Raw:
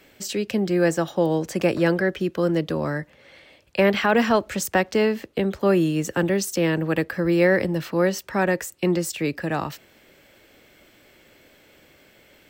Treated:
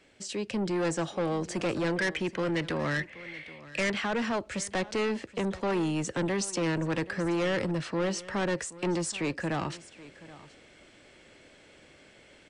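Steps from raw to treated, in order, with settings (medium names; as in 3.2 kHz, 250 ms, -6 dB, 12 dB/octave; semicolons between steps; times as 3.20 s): 1.96–3.92 s: peaking EQ 2.1 kHz +13.5 dB 0.92 oct; level rider gain up to 6 dB; saturation -17.5 dBFS, distortion -8 dB; brick-wall FIR low-pass 10 kHz; delay 777 ms -18.5 dB; trim -7.5 dB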